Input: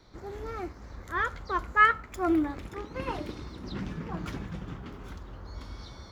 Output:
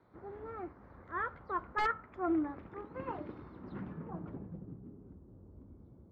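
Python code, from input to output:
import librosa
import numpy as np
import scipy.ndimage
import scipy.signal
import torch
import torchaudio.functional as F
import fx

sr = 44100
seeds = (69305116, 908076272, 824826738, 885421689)

y = fx.bandpass_edges(x, sr, low_hz=100.0, high_hz=6100.0)
y = (np.mod(10.0 ** (14.0 / 20.0) * y + 1.0, 2.0) - 1.0) / 10.0 ** (14.0 / 20.0)
y = fx.filter_sweep_lowpass(y, sr, from_hz=1400.0, to_hz=330.0, start_s=3.81, end_s=4.8, q=0.93)
y = F.gain(torch.from_numpy(y), -6.5).numpy()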